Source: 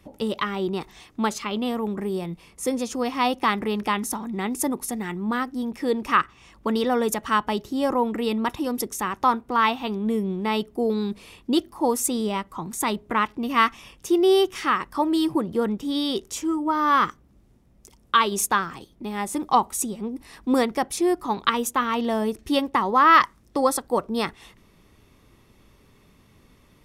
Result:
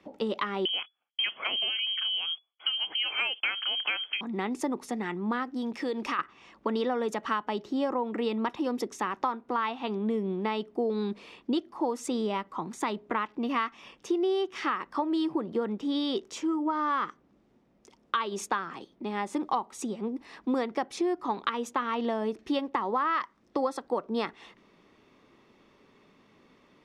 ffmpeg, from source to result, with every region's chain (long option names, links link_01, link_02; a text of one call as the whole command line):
ffmpeg -i in.wav -filter_complex "[0:a]asettb=1/sr,asplit=3[link_01][link_02][link_03];[link_01]atrim=end=0.654[link_04];[link_02]atrim=start=0.65:end=4.21,asetpts=PTS-STARTPTS,afade=type=in:duration=0.004:curve=qsin,afade=type=out:start_time=3.556:duration=0.004:curve=qsin,acontrast=53,agate=range=-41dB:threshold=-36dB:ratio=16:release=100:detection=peak,lowpass=frequency=2900:width_type=q:width=0.5098,lowpass=frequency=2900:width_type=q:width=0.6013,lowpass=frequency=2900:width_type=q:width=0.9,lowpass=frequency=2900:width_type=q:width=2.563,afreqshift=-3400[link_05];[link_03]atrim=start=4.206[link_06];[link_04][link_05]acrossfade=duration=0.004:curve1=hsin:curve2=qsin[link_07];[link_07][link_06]acrossfade=duration=0.004:curve1=qsin:curve2=hsin,asettb=1/sr,asplit=3[link_08][link_09][link_10];[link_08]atrim=end=5.564[link_11];[link_09]atrim=start=5.56:end=6.19,asetpts=PTS-STARTPTS,afade=type=in:duration=0.004:curve=qsin,afade=type=out:start_time=0.626:duration=0.004:curve=qsin,highshelf=frequency=2600:gain=9,acompressor=threshold=-26dB:ratio=4:attack=3.2:release=140:knee=1:detection=peak[link_12];[link_10]atrim=start=6.186[link_13];[link_11][link_12]acrossfade=duration=0.004:curve1=hsin:curve2=qsin[link_14];[link_14][link_13]acrossfade=duration=0.004:curve1=qsin:curve2=hsin,acrossover=split=190 6800:gain=0.1 1 0.1[link_15][link_16][link_17];[link_15][link_16][link_17]amix=inputs=3:normalize=0,acompressor=threshold=-25dB:ratio=6,highshelf=frequency=3900:gain=-7" out.wav